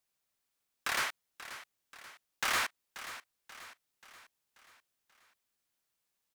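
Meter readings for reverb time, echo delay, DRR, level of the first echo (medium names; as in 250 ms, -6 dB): no reverb, 534 ms, no reverb, -13.5 dB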